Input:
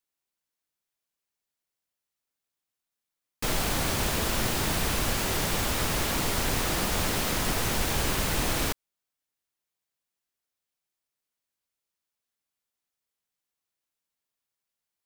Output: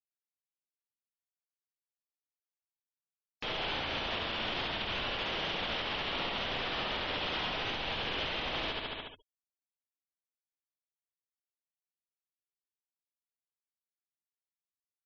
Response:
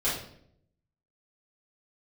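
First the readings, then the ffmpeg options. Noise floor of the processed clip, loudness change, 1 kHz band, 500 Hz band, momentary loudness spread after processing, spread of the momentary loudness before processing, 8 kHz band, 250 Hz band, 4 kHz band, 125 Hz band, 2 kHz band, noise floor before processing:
below −85 dBFS, −7.0 dB, −5.0 dB, −6.5 dB, 3 LU, 1 LU, −30.5 dB, −11.0 dB, −2.0 dB, −14.5 dB, −4.0 dB, below −85 dBFS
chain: -af "lowpass=frequency=3200:width_type=q:width=3.2,equalizer=frequency=680:width=0.83:gain=4.5,aecho=1:1:71|142|213|284|355|426|497:0.668|0.348|0.181|0.094|0.0489|0.0254|0.0132,acompressor=threshold=-37dB:ratio=5,afftfilt=real='re*gte(hypot(re,im),0.00251)':imag='im*gte(hypot(re,im),0.00251)':win_size=1024:overlap=0.75,alimiter=level_in=8.5dB:limit=-24dB:level=0:latency=1:release=107,volume=-8.5dB,lowshelf=frequency=200:gain=-7.5,volume=8dB"

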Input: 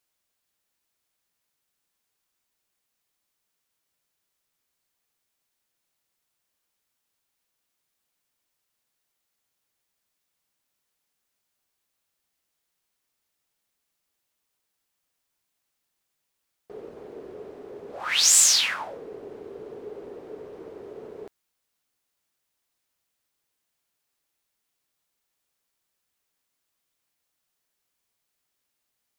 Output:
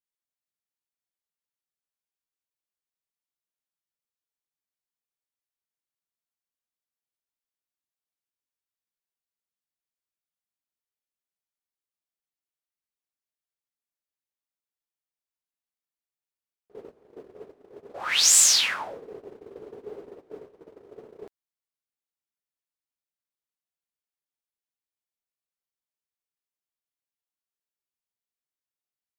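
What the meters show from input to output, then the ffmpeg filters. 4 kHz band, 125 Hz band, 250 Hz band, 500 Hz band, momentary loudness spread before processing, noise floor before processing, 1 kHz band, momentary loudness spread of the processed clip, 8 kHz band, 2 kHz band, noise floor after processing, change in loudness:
0.0 dB, can't be measured, −4.5 dB, −3.5 dB, 19 LU, −80 dBFS, 0.0 dB, 19 LU, 0.0 dB, 0.0 dB, below −85 dBFS, 0.0 dB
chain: -af "agate=range=-18dB:threshold=-39dB:ratio=16:detection=peak"

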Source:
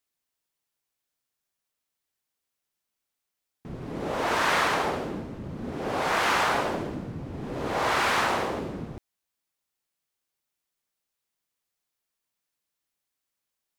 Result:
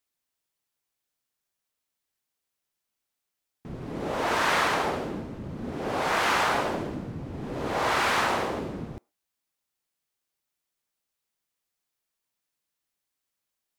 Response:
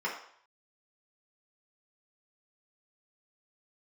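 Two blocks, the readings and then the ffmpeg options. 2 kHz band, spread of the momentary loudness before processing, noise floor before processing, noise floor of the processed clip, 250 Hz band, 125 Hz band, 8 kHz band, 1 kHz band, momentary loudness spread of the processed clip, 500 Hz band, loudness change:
−0.5 dB, 15 LU, −85 dBFS, −85 dBFS, 0.0 dB, 0.0 dB, 0.0 dB, 0.0 dB, 14 LU, 0.0 dB, 0.0 dB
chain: -filter_complex "[0:a]asplit=2[link_01][link_02];[1:a]atrim=start_sample=2205,atrim=end_sample=6615[link_03];[link_02][link_03]afir=irnorm=-1:irlink=0,volume=-30dB[link_04];[link_01][link_04]amix=inputs=2:normalize=0"

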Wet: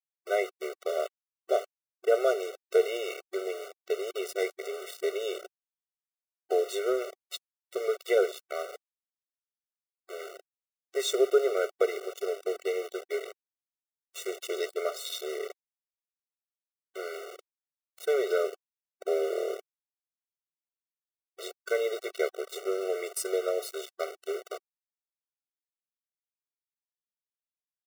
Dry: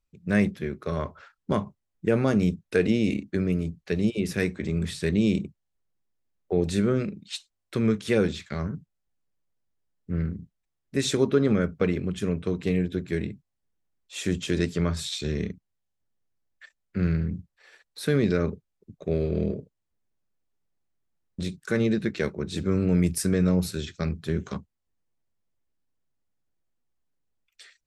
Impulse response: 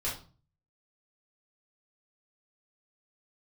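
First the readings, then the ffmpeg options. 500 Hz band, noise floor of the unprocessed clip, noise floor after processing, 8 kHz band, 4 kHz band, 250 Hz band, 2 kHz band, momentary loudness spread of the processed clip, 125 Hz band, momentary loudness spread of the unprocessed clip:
+0.5 dB, −81 dBFS, below −85 dBFS, −2.5 dB, −3.0 dB, −17.5 dB, −4.0 dB, 15 LU, below −40 dB, 13 LU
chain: -af "equalizer=frequency=700:width=3.8:gain=9.5,aeval=exprs='val(0)*gte(abs(val(0)),0.0266)':channel_layout=same,afftfilt=real='re*eq(mod(floor(b*sr/1024/380),2),1)':imag='im*eq(mod(floor(b*sr/1024/380),2),1)':win_size=1024:overlap=0.75"

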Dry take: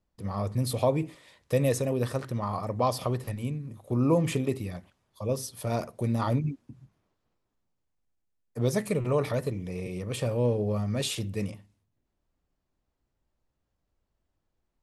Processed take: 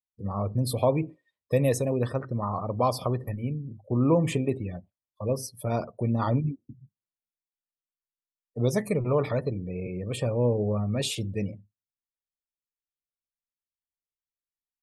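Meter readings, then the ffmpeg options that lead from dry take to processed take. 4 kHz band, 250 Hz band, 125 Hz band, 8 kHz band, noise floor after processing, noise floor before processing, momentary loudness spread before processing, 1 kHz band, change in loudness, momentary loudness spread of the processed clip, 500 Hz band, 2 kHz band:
+0.5 dB, +1.5 dB, +1.5 dB, −0.5 dB, below −85 dBFS, −80 dBFS, 10 LU, +1.5 dB, +1.5 dB, 9 LU, +1.5 dB, 0.0 dB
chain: -af "afftdn=noise_reduction=34:noise_floor=-43,volume=1.5dB"

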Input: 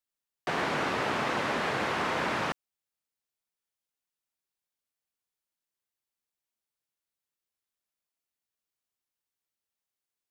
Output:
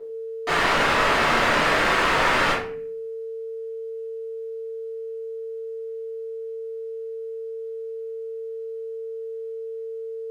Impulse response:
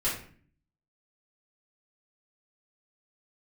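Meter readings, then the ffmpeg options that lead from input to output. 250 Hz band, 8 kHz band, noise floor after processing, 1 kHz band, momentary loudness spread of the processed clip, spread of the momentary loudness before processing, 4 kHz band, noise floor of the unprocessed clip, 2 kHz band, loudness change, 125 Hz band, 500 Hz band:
+5.5 dB, +10.5 dB, −33 dBFS, +9.5 dB, 15 LU, 5 LU, +11.5 dB, below −85 dBFS, +11.5 dB, +4.5 dB, +6.0 dB, +12.0 dB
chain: -filter_complex "[0:a]aeval=exprs='val(0)+0.00282*sin(2*PI*450*n/s)':channel_layout=same,asplit=2[link_01][link_02];[link_02]highpass=frequency=720:poles=1,volume=25dB,asoftclip=type=tanh:threshold=-17dB[link_03];[link_01][link_03]amix=inputs=2:normalize=0,lowpass=frequency=3900:poles=1,volume=-6dB[link_04];[1:a]atrim=start_sample=2205[link_05];[link_04][link_05]afir=irnorm=-1:irlink=0,volume=-4.5dB"

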